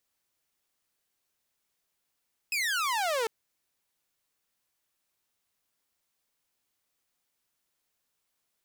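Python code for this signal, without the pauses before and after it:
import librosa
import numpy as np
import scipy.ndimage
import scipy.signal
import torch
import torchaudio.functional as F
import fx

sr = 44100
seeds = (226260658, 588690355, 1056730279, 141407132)

y = fx.laser_zap(sr, level_db=-24.0, start_hz=2600.0, end_hz=430.0, length_s=0.75, wave='saw')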